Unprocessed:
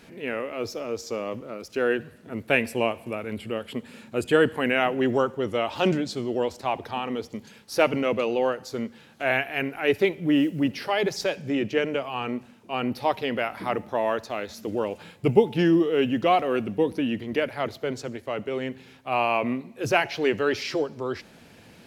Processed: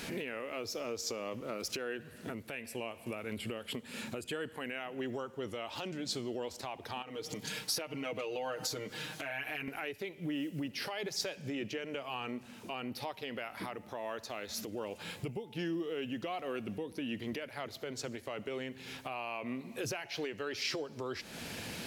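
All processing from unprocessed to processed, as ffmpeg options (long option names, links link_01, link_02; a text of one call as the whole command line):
ffmpeg -i in.wav -filter_complex "[0:a]asettb=1/sr,asplit=3[link_01][link_02][link_03];[link_01]atrim=end=7.024[link_04];[link_02]atrim=start=7.02:end=9.68,asetpts=PTS-STARTPTS,afade=type=in:duration=0.004:curve=qsin,afade=type=out:start_time=2.656:duration=0.004:curve=qsin,aecho=1:1:6.5:0.92,atrim=end_sample=117306,acompressor=threshold=-41dB:ratio=3:attack=3.2:release=140:knee=1:detection=peak[link_05];[link_03]atrim=start=9.676[link_06];[link_04][link_05]acrossfade=duration=0.004:curve1=hsin:curve2=qsin[link_07];[link_07][link_06]acrossfade=duration=0.004:curve1=qsin:curve2=hsin,acompressor=threshold=-39dB:ratio=4,alimiter=level_in=11.5dB:limit=-24dB:level=0:latency=1:release=497,volume=-11.5dB,highshelf=frequency=2200:gain=8,volume=6dB" out.wav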